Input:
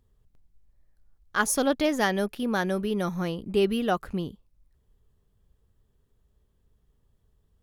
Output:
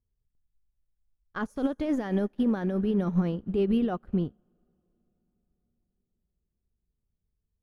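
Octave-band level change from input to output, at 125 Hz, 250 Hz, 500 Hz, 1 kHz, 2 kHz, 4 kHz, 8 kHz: +3.0 dB, +2.0 dB, -4.0 dB, -9.0 dB, -12.5 dB, -13.5 dB, under -25 dB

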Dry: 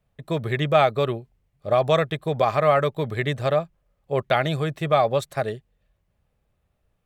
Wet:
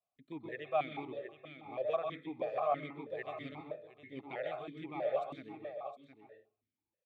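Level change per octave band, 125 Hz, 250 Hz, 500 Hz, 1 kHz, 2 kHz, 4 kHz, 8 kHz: -27.5 dB, -15.5 dB, -15.5 dB, -15.5 dB, -17.5 dB, -21.5 dB, n/a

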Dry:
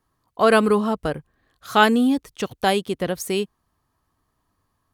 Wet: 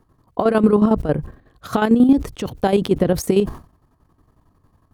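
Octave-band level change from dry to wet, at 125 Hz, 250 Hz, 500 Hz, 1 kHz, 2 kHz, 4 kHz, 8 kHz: +8.5, +6.0, +2.5, -3.0, -7.5, -6.5, -1.0 dB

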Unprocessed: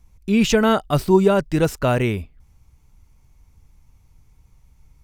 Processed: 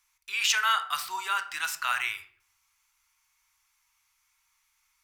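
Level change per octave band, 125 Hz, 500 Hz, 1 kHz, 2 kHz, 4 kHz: under -40 dB, -34.5 dB, -4.5 dB, +0.5 dB, +0.5 dB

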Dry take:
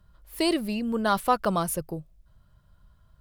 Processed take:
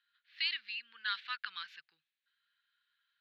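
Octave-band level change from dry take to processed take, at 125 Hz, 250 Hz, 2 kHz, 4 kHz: under -40 dB, under -40 dB, -2.5 dB, -2.0 dB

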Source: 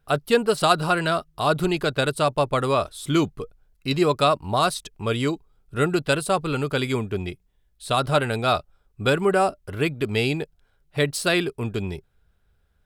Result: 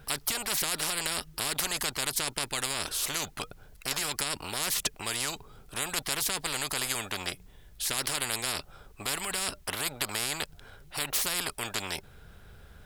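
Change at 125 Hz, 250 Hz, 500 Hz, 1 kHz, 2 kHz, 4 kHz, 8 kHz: -17.5, -17.5, -18.5, -13.5, -6.5, -1.5, +7.0 dB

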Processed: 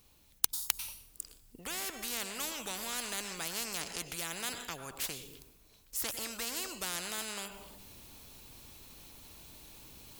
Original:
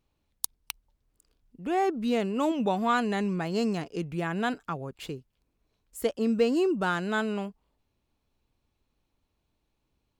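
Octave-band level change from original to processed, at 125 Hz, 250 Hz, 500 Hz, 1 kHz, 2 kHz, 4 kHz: -16.5, -20.5, -18.5, -14.0, -7.0, +2.5 dB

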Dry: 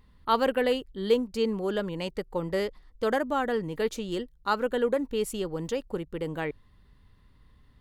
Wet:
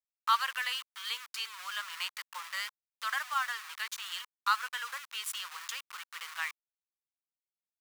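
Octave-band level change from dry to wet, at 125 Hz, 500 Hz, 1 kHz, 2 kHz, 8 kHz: under -40 dB, -36.5 dB, -2.5 dB, +1.5 dB, +3.5 dB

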